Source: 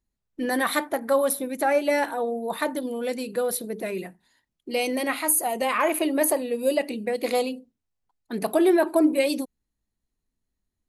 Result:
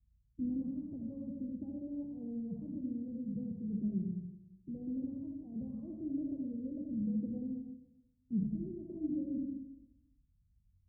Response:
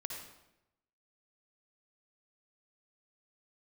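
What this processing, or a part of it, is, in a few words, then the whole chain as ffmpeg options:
club heard from the street: -filter_complex "[0:a]highpass=44,alimiter=limit=-14dB:level=0:latency=1:release=193,lowpass=frequency=140:width=0.5412,lowpass=frequency=140:width=1.3066[link_01];[1:a]atrim=start_sample=2205[link_02];[link_01][link_02]afir=irnorm=-1:irlink=0,asettb=1/sr,asplit=3[link_03][link_04][link_05];[link_03]atrim=end=8.434[link_06];[link_04]atrim=start=8.43:end=8.9,asetpts=PTS-STARTPTS,afade=type=in:duration=0.004:curve=qsin,afade=type=out:start_time=0.466:duration=0.004:curve=qsin,equalizer=frequency=880:width=0.44:gain=-10.5[link_07];[link_05]atrim=start=8.896[link_08];[link_06][link_07]acrossfade=duration=0.004:curve1=hsin:curve2=qsin[link_09];[link_09][link_08]acrossfade=duration=0.004:curve1=qsin:curve2=hsin,volume=16.5dB"

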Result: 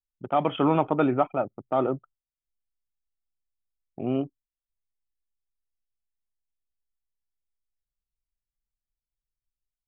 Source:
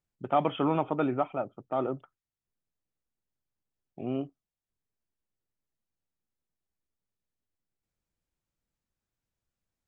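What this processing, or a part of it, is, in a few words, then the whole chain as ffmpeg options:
voice memo with heavy noise removal: -af "anlmdn=0.0631,dynaudnorm=framelen=330:gausssize=3:maxgain=5.5dB"

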